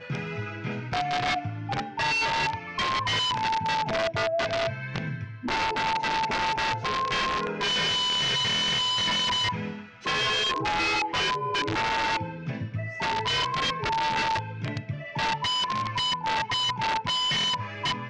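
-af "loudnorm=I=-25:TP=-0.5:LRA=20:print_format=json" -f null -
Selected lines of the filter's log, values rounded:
"input_i" : "-26.1",
"input_tp" : "-18.9",
"input_lra" : "2.8",
"input_thresh" : "-36.1",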